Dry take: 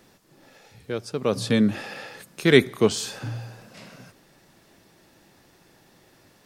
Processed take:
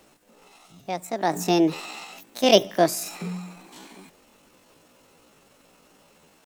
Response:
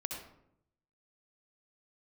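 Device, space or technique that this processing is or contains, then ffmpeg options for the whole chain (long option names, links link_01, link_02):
chipmunk voice: -af "asetrate=68011,aresample=44100,atempo=0.64842"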